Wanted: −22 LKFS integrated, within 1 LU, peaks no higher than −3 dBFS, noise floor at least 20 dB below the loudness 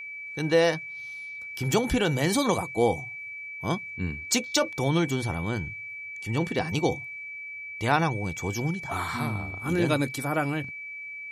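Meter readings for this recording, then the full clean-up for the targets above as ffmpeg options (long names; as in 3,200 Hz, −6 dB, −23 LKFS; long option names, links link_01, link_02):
interfering tone 2,300 Hz; level of the tone −36 dBFS; integrated loudness −28.0 LKFS; sample peak −9.5 dBFS; target loudness −22.0 LKFS
→ -af "bandreject=frequency=2300:width=30"
-af "volume=6dB"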